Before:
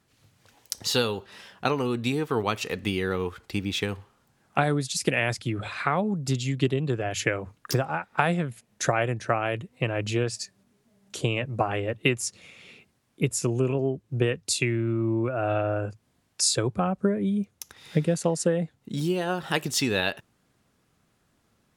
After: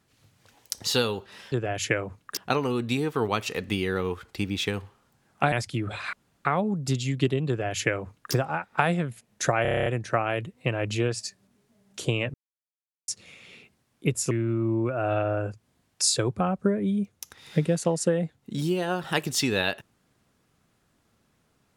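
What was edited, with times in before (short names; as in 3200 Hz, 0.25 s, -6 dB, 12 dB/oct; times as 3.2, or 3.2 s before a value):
4.67–5.24 cut
5.85 insert room tone 0.32 s
6.88–7.73 copy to 1.52
9.02 stutter 0.03 s, 9 plays
11.5–12.24 mute
13.47–14.7 cut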